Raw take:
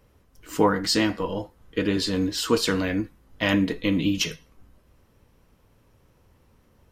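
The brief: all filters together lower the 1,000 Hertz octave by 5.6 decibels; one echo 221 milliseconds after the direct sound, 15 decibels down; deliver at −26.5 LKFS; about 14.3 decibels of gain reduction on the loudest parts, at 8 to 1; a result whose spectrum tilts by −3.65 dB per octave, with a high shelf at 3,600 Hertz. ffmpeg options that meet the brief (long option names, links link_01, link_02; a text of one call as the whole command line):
ffmpeg -i in.wav -af "equalizer=frequency=1000:width_type=o:gain=-7,highshelf=frequency=3600:gain=5,acompressor=threshold=-31dB:ratio=8,aecho=1:1:221:0.178,volume=8.5dB" out.wav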